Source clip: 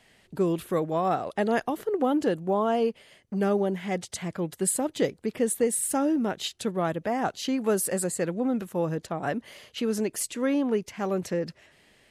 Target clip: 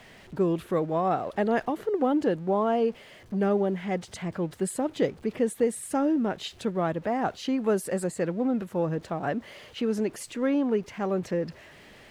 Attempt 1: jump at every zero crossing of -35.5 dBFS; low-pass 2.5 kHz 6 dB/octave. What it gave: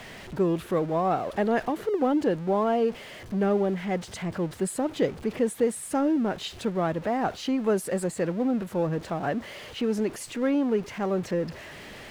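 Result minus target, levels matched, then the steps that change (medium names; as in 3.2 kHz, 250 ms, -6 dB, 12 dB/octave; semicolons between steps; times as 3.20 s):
jump at every zero crossing: distortion +9 dB
change: jump at every zero crossing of -45 dBFS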